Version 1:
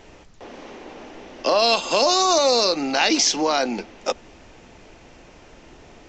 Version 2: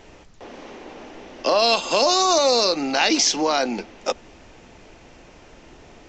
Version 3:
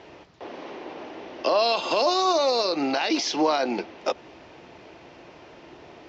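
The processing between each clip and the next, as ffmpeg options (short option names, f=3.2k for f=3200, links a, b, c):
-af anull
-af "alimiter=limit=-14dB:level=0:latency=1:release=99,highpass=110,equalizer=f=220:t=q:w=4:g=-5,equalizer=f=350:t=q:w=4:g=4,equalizer=f=650:t=q:w=4:g=3,equalizer=f=990:t=q:w=4:g=3,lowpass=f=5.1k:w=0.5412,lowpass=f=5.1k:w=1.3066"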